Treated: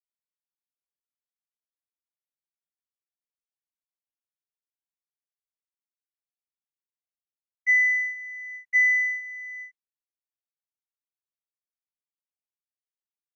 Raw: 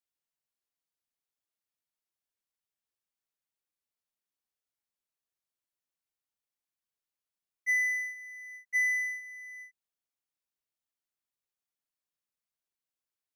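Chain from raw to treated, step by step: distance through air 63 m; gate with hold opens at -42 dBFS; peaking EQ 2 kHz +8.5 dB 0.36 oct

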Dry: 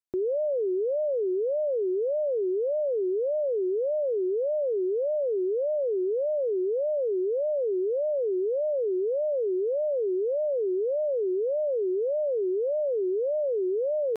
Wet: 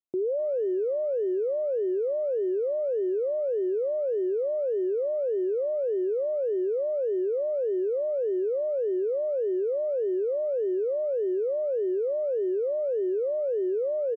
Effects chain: Butterworth band-pass 330 Hz, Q 0.57; speakerphone echo 250 ms, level -21 dB

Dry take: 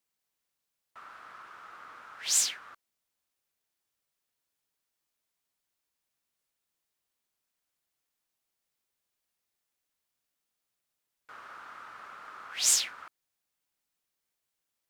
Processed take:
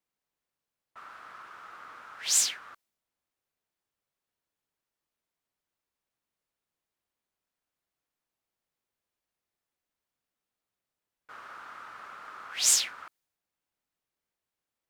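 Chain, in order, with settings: tape noise reduction on one side only decoder only; trim +1.5 dB

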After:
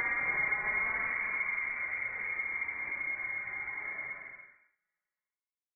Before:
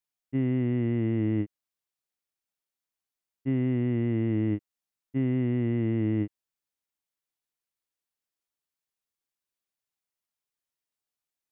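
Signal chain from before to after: two-slope reverb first 0.48 s, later 4 s, from -18 dB, DRR -4 dB; waveshaping leveller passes 5; gate -31 dBFS, range -41 dB; Paulstretch 5.6×, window 0.25 s, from 1.10 s; echo from a far wall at 79 m, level -7 dB; speed mistake 7.5 ips tape played at 15 ips; elliptic high-pass 550 Hz, stop band 40 dB; frequency inversion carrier 2.8 kHz; compression 2:1, threshold -30 dBFS, peak gain reduction 10.5 dB; trim -6 dB

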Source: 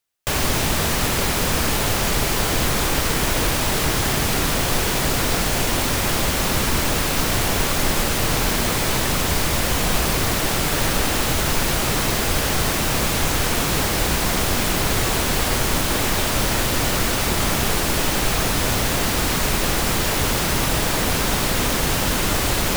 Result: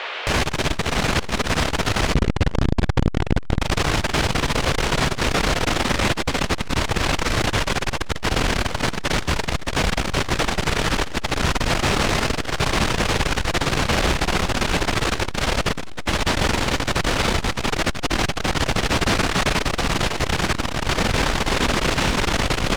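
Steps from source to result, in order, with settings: distance through air 100 m; in parallel at -10 dB: sine folder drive 14 dB, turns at -7.5 dBFS; on the sum: Schroeder reverb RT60 1.1 s, combs from 29 ms, DRR 10.5 dB; bit crusher 8-bit; 2.14–3.61 s: tilt EQ -2.5 dB/octave; on a send: frequency-shifting echo 101 ms, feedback 50%, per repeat -49 Hz, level -12.5 dB; on the sum: band noise 420–3300 Hz -28 dBFS; transformer saturation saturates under 290 Hz; trim -2 dB

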